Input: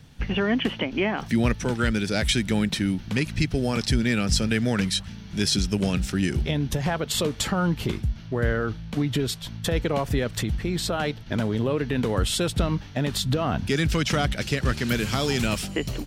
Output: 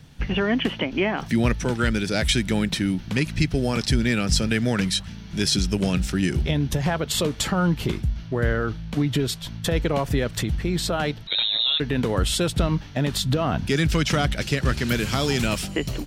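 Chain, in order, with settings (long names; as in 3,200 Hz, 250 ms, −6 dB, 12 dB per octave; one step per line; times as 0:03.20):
on a send at −22.5 dB: convolution reverb RT60 0.10 s, pre-delay 3 ms
0:11.27–0:11.80: on the sum: voice inversion scrambler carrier 3,900 Hz
level +1.5 dB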